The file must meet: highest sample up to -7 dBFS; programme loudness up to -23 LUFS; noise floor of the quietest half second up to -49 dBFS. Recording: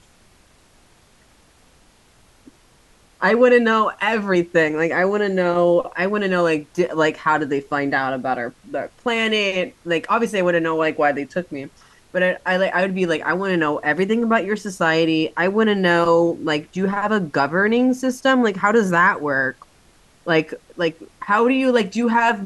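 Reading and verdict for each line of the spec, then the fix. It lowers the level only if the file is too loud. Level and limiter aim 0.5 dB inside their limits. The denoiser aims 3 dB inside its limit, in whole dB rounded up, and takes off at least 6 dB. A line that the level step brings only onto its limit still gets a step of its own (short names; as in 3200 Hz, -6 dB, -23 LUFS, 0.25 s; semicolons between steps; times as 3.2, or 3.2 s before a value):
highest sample -3.5 dBFS: fail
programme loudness -19.0 LUFS: fail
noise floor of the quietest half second -54 dBFS: OK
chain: gain -4.5 dB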